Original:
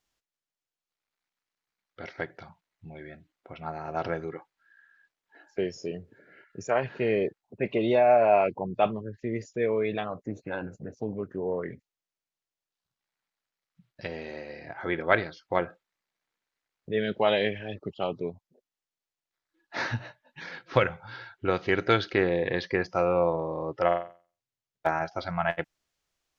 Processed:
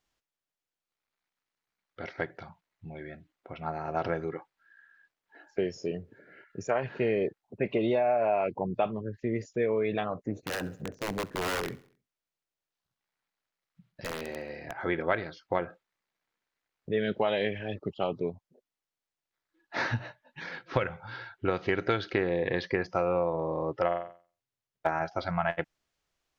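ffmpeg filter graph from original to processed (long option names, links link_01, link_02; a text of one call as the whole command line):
ffmpeg -i in.wav -filter_complex "[0:a]asettb=1/sr,asplit=3[link_01][link_02][link_03];[link_01]atrim=end=10.364[link_04];[link_02]atrim=start=10.36:end=14.73,asetpts=PTS-STARTPTS,afade=type=in:duration=0.004:curve=qsin,afade=type=out:start_time=4.366:duration=0.004:curve=qsin,aeval=exprs='(mod(21.1*val(0)+1,2)-1)/21.1':channel_layout=same,aecho=1:1:67|134|201|268:0.0891|0.0446|0.0223|0.0111,atrim=end_sample=192717[link_05];[link_03]atrim=start=14.726[link_06];[link_04][link_05]acrossfade=duration=0.004:curve1=hsin:curve2=qsin[link_07];[link_07][link_06]acrossfade=duration=0.004:curve1=qsin:curve2=hsin,highshelf=frequency=4200:gain=-5.5,acompressor=threshold=-25dB:ratio=5,volume=1.5dB" out.wav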